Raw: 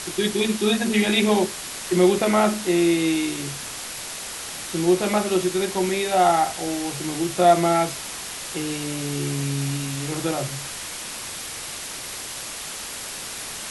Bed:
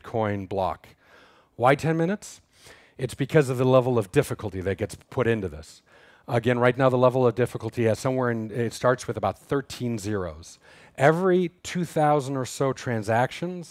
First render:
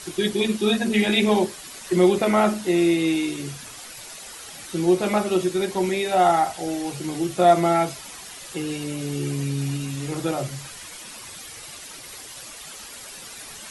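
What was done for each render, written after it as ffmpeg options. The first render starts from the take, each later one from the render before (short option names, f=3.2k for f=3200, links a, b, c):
-af "afftdn=nr=10:nf=-34"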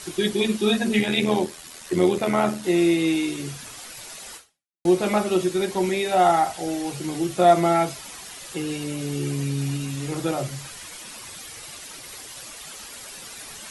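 -filter_complex "[0:a]asettb=1/sr,asplit=3[a][b][c];[a]atrim=end=0.994[d];[b]atrim=start=0.99:end=2.64,asetpts=PTS-STARTPTS,afade=t=in:d=0.004:c=qsin,afade=t=out:st=1.646:d=0.004:c=qsin,tremolo=f=81:d=0.571[e];[c]atrim=start=2.636[f];[d][e]acrossfade=d=0.004:c1=hsin:c2=qsin[g];[g][f]acrossfade=d=0.004:c1=qsin:c2=hsin,asplit=2[h][i];[h]atrim=end=4.85,asetpts=PTS-STARTPTS,afade=t=out:st=4.36:d=0.49:c=exp[j];[i]atrim=start=4.85,asetpts=PTS-STARTPTS,afade=t=in:d=0.004:c=hsin[k];[j][k]concat=n=2:v=0:a=1"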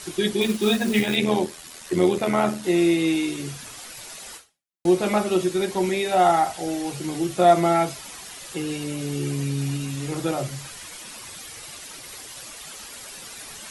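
-filter_complex "[0:a]asettb=1/sr,asplit=3[a][b][c];[a]atrim=end=0.414[d];[b]atrim=start=0.41:end=1.16,asetpts=PTS-STARTPTS,afade=t=in:d=0.004:c=qsin,afade=t=out:st=0.746:d=0.004:c=qsin,acrusher=bits=4:mode=log:mix=0:aa=0.000001[e];[c]atrim=start=1.156[f];[d][e]acrossfade=d=0.004:c1=hsin:c2=qsin[g];[g][f]acrossfade=d=0.004:c1=qsin:c2=hsin"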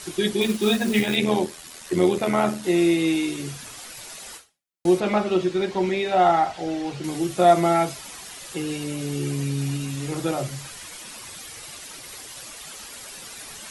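-filter_complex "[0:a]asettb=1/sr,asplit=3[a][b][c];[a]atrim=end=5.004[d];[b]atrim=start=5:end=7.04,asetpts=PTS-STARTPTS,afade=t=in:d=0.004:c=qsin,afade=t=out:st=2.036:d=0.004:c=qsin,lowpass=4.5k[e];[c]atrim=start=7.036[f];[d][e]acrossfade=d=0.004:c1=hsin:c2=qsin[g];[g][f]acrossfade=d=0.004:c1=qsin:c2=hsin"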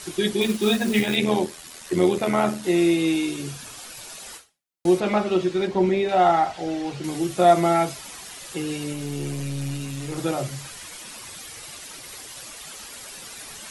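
-filter_complex "[0:a]asettb=1/sr,asplit=3[a][b][c];[a]atrim=end=2.904[d];[b]atrim=start=2.9:end=4.26,asetpts=PTS-STARTPTS,afade=t=in:d=0.004:c=qsin,afade=t=out:st=1.356:d=0.004:c=qsin,bandreject=f=2k:w=12[e];[c]atrim=start=4.256[f];[d][e]acrossfade=d=0.004:c1=hsin:c2=qsin[g];[g][f]acrossfade=d=0.004:c1=qsin:c2=hsin,asettb=1/sr,asplit=3[h][i][j];[h]atrim=end=5.674[k];[i]atrim=start=5.67:end=6.09,asetpts=PTS-STARTPTS,afade=t=in:d=0.004:c=qsin,afade=t=out:st=0.416:d=0.004:c=qsin,tiltshelf=f=970:g=4.5[l];[j]atrim=start=6.086[m];[k][l]acrossfade=d=0.004:c1=hsin:c2=qsin[n];[n][m]acrossfade=d=0.004:c1=qsin:c2=hsin,asettb=1/sr,asplit=3[o][p][q];[o]atrim=end=8.934[r];[p]atrim=start=8.93:end=10.18,asetpts=PTS-STARTPTS,afade=t=in:d=0.004:c=qsin,afade=t=out:st=1.246:d=0.004:c=qsin,aeval=exprs='(tanh(11.2*val(0)+0.4)-tanh(0.4))/11.2':c=same[s];[q]atrim=start=10.176[t];[r][s]acrossfade=d=0.004:c1=hsin:c2=qsin[u];[u][t]acrossfade=d=0.004:c1=qsin:c2=hsin"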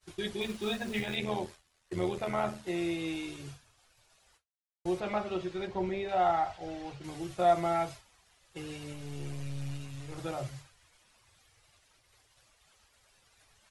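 -af "agate=range=-33dB:threshold=-29dB:ratio=3:detection=peak,firequalizer=gain_entry='entry(100,0);entry(150,-11);entry(240,-16);entry(620,-9);entry(11000,-18)':delay=0.05:min_phase=1"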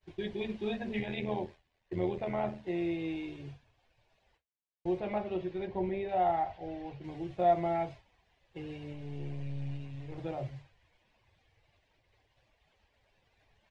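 -af "lowpass=2.3k,equalizer=f=1.3k:t=o:w=0.51:g=-13"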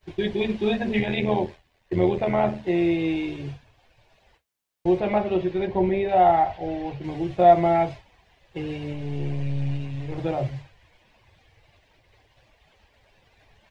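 -af "volume=11.5dB"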